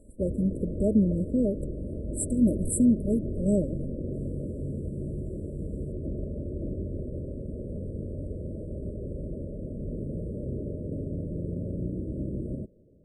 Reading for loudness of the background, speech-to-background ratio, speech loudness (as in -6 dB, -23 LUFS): -35.5 LUFS, 8.5 dB, -27.0 LUFS